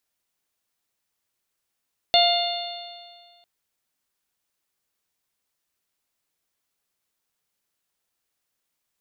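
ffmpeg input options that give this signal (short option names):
-f lavfi -i "aevalsrc='0.158*pow(10,-3*t/1.82)*sin(2*PI*695.73*t)+0.0158*pow(10,-3*t/1.82)*sin(2*PI*1395.83*t)+0.0355*pow(10,-3*t/1.82)*sin(2*PI*2104.61*t)+0.0708*pow(10,-3*t/1.82)*sin(2*PI*2826.32*t)+0.126*pow(10,-3*t/1.82)*sin(2*PI*3565.05*t)+0.106*pow(10,-3*t/1.82)*sin(2*PI*4324.75*t)':d=1.3:s=44100"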